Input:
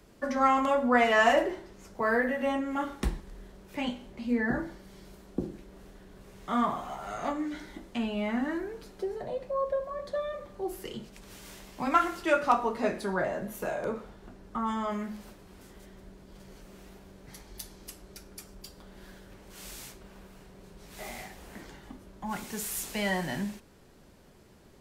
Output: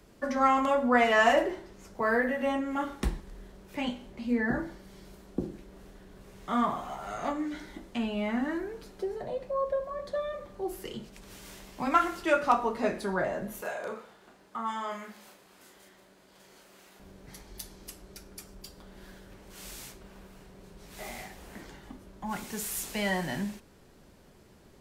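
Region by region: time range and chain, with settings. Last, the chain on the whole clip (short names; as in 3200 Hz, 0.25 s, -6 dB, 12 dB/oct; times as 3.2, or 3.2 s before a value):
13.61–17 HPF 770 Hz 6 dB/oct + notch 5600 Hz, Q 28 + doubler 35 ms -4 dB
whole clip: dry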